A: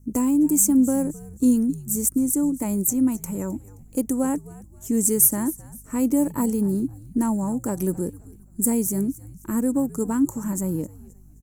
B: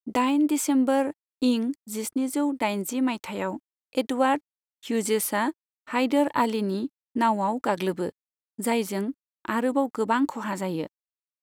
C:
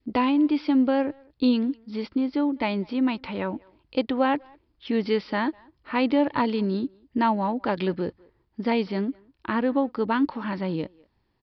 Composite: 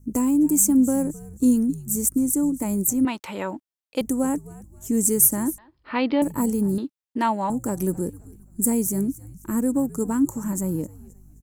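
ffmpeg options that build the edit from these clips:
-filter_complex "[1:a]asplit=2[s0][s1];[0:a]asplit=4[s2][s3][s4][s5];[s2]atrim=end=3.052[s6];[s0]atrim=start=3.048:end=4.012[s7];[s3]atrim=start=4.008:end=5.582[s8];[2:a]atrim=start=5.578:end=6.222[s9];[s4]atrim=start=6.218:end=6.782[s10];[s1]atrim=start=6.778:end=7.502[s11];[s5]atrim=start=7.498[s12];[s6][s7]acrossfade=d=0.004:c1=hsin:c2=hsin[s13];[s13][s8]acrossfade=d=0.004:c1=hsin:c2=hsin[s14];[s14][s9]acrossfade=d=0.004:c1=hsin:c2=hsin[s15];[s15][s10]acrossfade=d=0.004:c1=hsin:c2=hsin[s16];[s16][s11]acrossfade=d=0.004:c1=hsin:c2=hsin[s17];[s17][s12]acrossfade=d=0.004:c1=hsin:c2=hsin"

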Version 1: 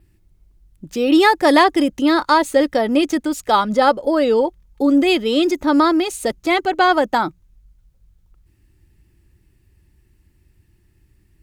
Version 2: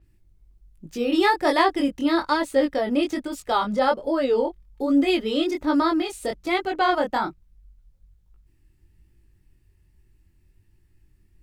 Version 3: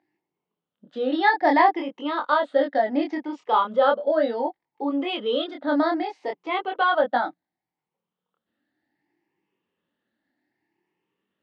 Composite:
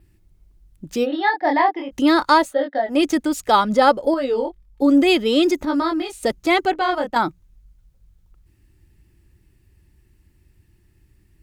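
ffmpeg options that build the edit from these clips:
-filter_complex "[2:a]asplit=2[s0][s1];[1:a]asplit=3[s2][s3][s4];[0:a]asplit=6[s5][s6][s7][s8][s9][s10];[s5]atrim=end=1.07[s11];[s0]atrim=start=1.03:end=1.93[s12];[s6]atrim=start=1.89:end=2.55[s13];[s1]atrim=start=2.39:end=3.01[s14];[s7]atrim=start=2.85:end=4.142[s15];[s2]atrim=start=4.138:end=4.822[s16];[s8]atrim=start=4.818:end=5.652[s17];[s3]atrim=start=5.648:end=6.232[s18];[s9]atrim=start=6.228:end=6.732[s19];[s4]atrim=start=6.728:end=7.162[s20];[s10]atrim=start=7.158[s21];[s11][s12]acrossfade=d=0.04:c1=tri:c2=tri[s22];[s22][s13]acrossfade=d=0.04:c1=tri:c2=tri[s23];[s23][s14]acrossfade=d=0.16:c1=tri:c2=tri[s24];[s24][s15]acrossfade=d=0.16:c1=tri:c2=tri[s25];[s25][s16]acrossfade=d=0.004:c1=hsin:c2=hsin[s26];[s26][s17]acrossfade=d=0.004:c1=hsin:c2=hsin[s27];[s27][s18]acrossfade=d=0.004:c1=hsin:c2=hsin[s28];[s28][s19]acrossfade=d=0.004:c1=hsin:c2=hsin[s29];[s29][s20]acrossfade=d=0.004:c1=hsin:c2=hsin[s30];[s30][s21]acrossfade=d=0.004:c1=hsin:c2=hsin"

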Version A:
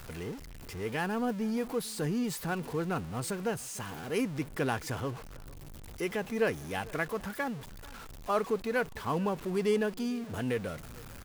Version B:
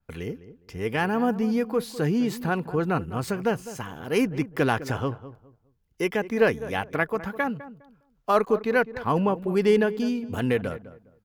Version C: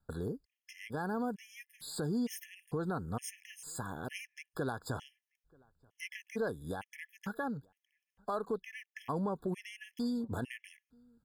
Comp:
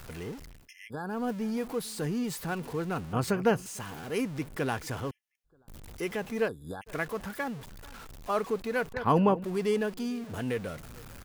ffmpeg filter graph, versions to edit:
-filter_complex "[2:a]asplit=3[s0][s1][s2];[1:a]asplit=2[s3][s4];[0:a]asplit=6[s5][s6][s7][s8][s9][s10];[s5]atrim=end=0.69[s11];[s0]atrim=start=0.45:end=1.29[s12];[s6]atrim=start=1.05:end=3.132[s13];[s3]atrim=start=3.128:end=3.662[s14];[s7]atrim=start=3.658:end=5.112[s15];[s1]atrim=start=5.108:end=5.682[s16];[s8]atrim=start=5.678:end=6.49[s17];[s2]atrim=start=6.45:end=6.9[s18];[s9]atrim=start=6.86:end=8.942[s19];[s4]atrim=start=8.938:end=9.442[s20];[s10]atrim=start=9.438[s21];[s11][s12]acrossfade=d=0.24:c1=tri:c2=tri[s22];[s22][s13]acrossfade=d=0.24:c1=tri:c2=tri[s23];[s23][s14]acrossfade=d=0.004:c1=hsin:c2=hsin[s24];[s24][s15]acrossfade=d=0.004:c1=hsin:c2=hsin[s25];[s25][s16]acrossfade=d=0.004:c1=hsin:c2=hsin[s26];[s26][s17]acrossfade=d=0.004:c1=hsin:c2=hsin[s27];[s27][s18]acrossfade=d=0.04:c1=tri:c2=tri[s28];[s28][s19]acrossfade=d=0.04:c1=tri:c2=tri[s29];[s29][s20]acrossfade=d=0.004:c1=hsin:c2=hsin[s30];[s30][s21]acrossfade=d=0.004:c1=hsin:c2=hsin"

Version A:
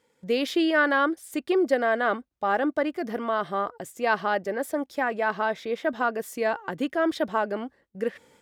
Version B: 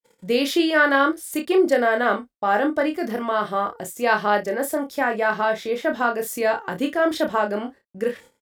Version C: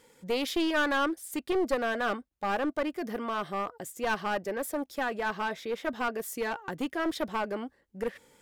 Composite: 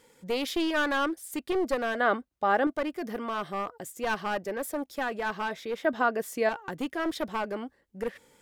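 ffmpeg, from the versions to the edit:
-filter_complex "[0:a]asplit=2[s0][s1];[2:a]asplit=3[s2][s3][s4];[s2]atrim=end=2.002[s5];[s0]atrim=start=1.998:end=2.672[s6];[s3]atrim=start=2.668:end=5.852[s7];[s1]atrim=start=5.848:end=6.492[s8];[s4]atrim=start=6.488[s9];[s5][s6]acrossfade=d=0.004:c1=hsin:c2=hsin[s10];[s10][s7]acrossfade=d=0.004:c1=hsin:c2=hsin[s11];[s11][s8]acrossfade=d=0.004:c1=hsin:c2=hsin[s12];[s12][s9]acrossfade=d=0.004:c1=hsin:c2=hsin"

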